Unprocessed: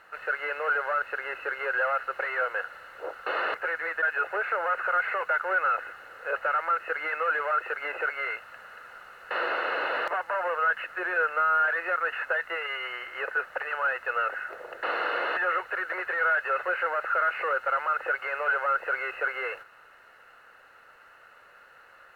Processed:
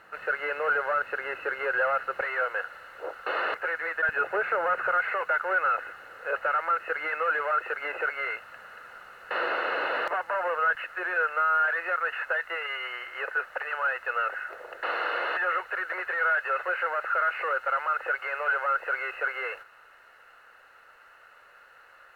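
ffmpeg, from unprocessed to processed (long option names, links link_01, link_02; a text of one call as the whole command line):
ffmpeg -i in.wav -af "asetnsamples=nb_out_samples=441:pad=0,asendcmd='2.21 equalizer g 0;4.09 equalizer g 10;4.92 equalizer g 2;10.75 equalizer g -5.5',equalizer=frequency=180:width_type=o:width=2.3:gain=7.5" out.wav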